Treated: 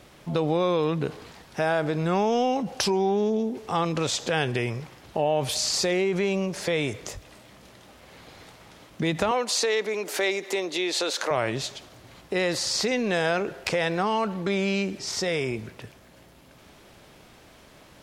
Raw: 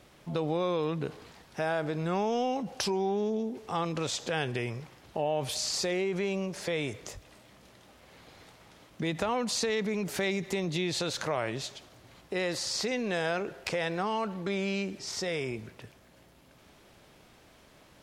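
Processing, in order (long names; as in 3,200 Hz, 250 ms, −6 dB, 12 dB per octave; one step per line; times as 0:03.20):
0:09.31–0:11.31: high-pass filter 320 Hz 24 dB per octave
level +6 dB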